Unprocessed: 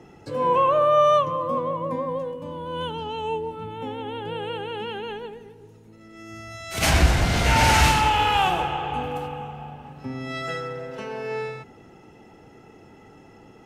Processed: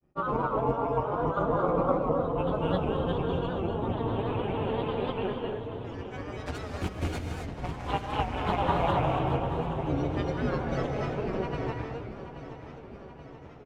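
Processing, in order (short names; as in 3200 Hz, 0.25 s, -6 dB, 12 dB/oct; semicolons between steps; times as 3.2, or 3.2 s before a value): HPF 54 Hz 12 dB/oct; tilt -3 dB/oct; gate with hold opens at -33 dBFS; negative-ratio compressor -21 dBFS, ratio -0.5; chorus voices 4, 0.18 Hz, delay 11 ms, depth 3.7 ms; AM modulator 200 Hz, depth 85%; grains 0.1 s, grains 20/s, spray 0.417 s, pitch spread up and down by 3 st; on a send: feedback echo 0.829 s, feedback 59%, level -12.5 dB; on the sum: non-linear reverb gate 0.3 s rising, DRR 2.5 dB; record warp 78 rpm, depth 100 cents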